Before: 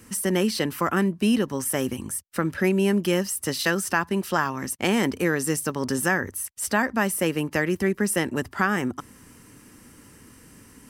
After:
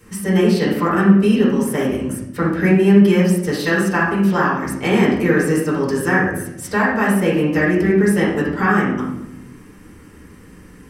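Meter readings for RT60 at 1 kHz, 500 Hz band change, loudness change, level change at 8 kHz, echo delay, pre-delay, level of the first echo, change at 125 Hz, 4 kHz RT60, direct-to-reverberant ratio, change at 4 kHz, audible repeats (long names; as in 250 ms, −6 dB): 0.70 s, +8.5 dB, +8.0 dB, −3.5 dB, no echo audible, 4 ms, no echo audible, +10.5 dB, 0.60 s, −9.0 dB, +1.0 dB, no echo audible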